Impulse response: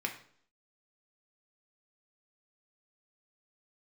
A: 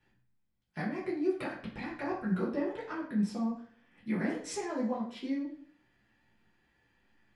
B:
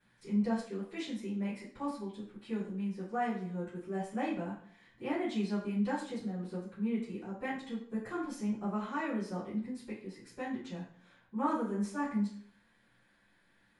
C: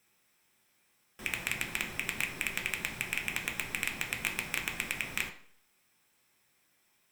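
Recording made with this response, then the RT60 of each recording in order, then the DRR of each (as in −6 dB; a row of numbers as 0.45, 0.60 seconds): C; 0.60, 0.60, 0.60 seconds; −8.0, −17.0, 2.0 decibels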